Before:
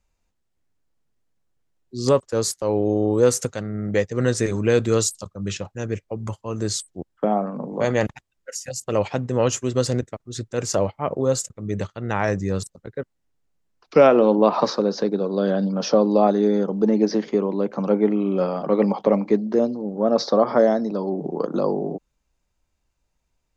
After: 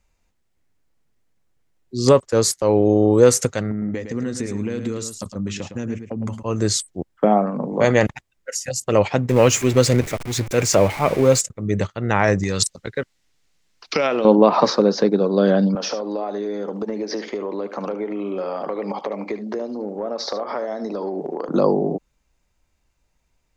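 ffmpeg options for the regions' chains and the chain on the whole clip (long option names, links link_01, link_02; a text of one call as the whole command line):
ffmpeg -i in.wav -filter_complex "[0:a]asettb=1/sr,asplit=3[link_01][link_02][link_03];[link_01]atrim=end=3.714[link_04];[link_02]atrim=start=3.71:end=6.43,asetpts=PTS-STARTPTS,afade=type=in:duration=0.004:curve=qsin,afade=type=out:start_time=2.716:duration=0.004:curve=qsin,acompressor=threshold=-31dB:ratio=8:attack=3.2:release=140:knee=1:detection=peak,equalizer=frequency=240:width_type=o:width=0.62:gain=10.5,aecho=1:1:109:0.355,atrim=end_sample=119952[link_05];[link_03]atrim=start=6.426[link_06];[link_04][link_05]acrossfade=duration=0.004:curve1=hsin:curve2=qsin[link_07];[link_07][link_06]acrossfade=duration=0.004:curve1=qsin:curve2=hsin,asettb=1/sr,asplit=3[link_08][link_09][link_10];[link_08]atrim=end=9.294[link_11];[link_09]atrim=start=9.29:end=11.41,asetpts=PTS-STARTPTS,afade=type=in:duration=0.004:curve=qsin,afade=type=out:start_time=2.116:duration=0.004:curve=qsin,aeval=exprs='val(0)+0.5*0.0266*sgn(val(0))':channel_layout=same,equalizer=frequency=2300:width_type=o:width=0.25:gain=7[link_12];[link_10]atrim=start=11.406[link_13];[link_11][link_12]acrossfade=duration=0.004:curve1=hsin:curve2=qsin[link_14];[link_14][link_13]acrossfade=duration=0.004:curve1=qsin:curve2=hsin,asettb=1/sr,asplit=3[link_15][link_16][link_17];[link_15]atrim=end=12.434[link_18];[link_16]atrim=start=12.43:end=14.25,asetpts=PTS-STARTPTS,afade=type=in:duration=0.004:curve=qsin,afade=type=out:start_time=1.816:duration=0.004:curve=qsin,acompressor=threshold=-24dB:ratio=6:attack=3.2:release=140:knee=1:detection=peak,equalizer=frequency=4500:width_type=o:width=2.8:gain=14[link_19];[link_17]atrim=start=14.246[link_20];[link_18][link_19]acrossfade=duration=0.004:curve1=hsin:curve2=qsin[link_21];[link_21][link_20]acrossfade=duration=0.004:curve1=qsin:curve2=hsin,asettb=1/sr,asplit=3[link_22][link_23][link_24];[link_22]atrim=end=15.754[link_25];[link_23]atrim=start=15.75:end=21.49,asetpts=PTS-STARTPTS,afade=type=in:duration=0.004:curve=qsin,afade=type=out:start_time=5.736:duration=0.004:curve=qsin,highpass=330,acompressor=threshold=-27dB:ratio=8:attack=3.2:release=140:knee=1:detection=peak,aecho=1:1:74:0.251,atrim=end_sample=253134[link_26];[link_24]atrim=start=21.486[link_27];[link_25][link_26]acrossfade=duration=0.004:curve1=hsin:curve2=qsin[link_28];[link_28][link_27]acrossfade=duration=0.004:curve1=qsin:curve2=hsin,equalizer=frequency=2100:width_type=o:width=0.44:gain=3.5,alimiter=level_in=6dB:limit=-1dB:release=50:level=0:latency=1,volume=-1dB" out.wav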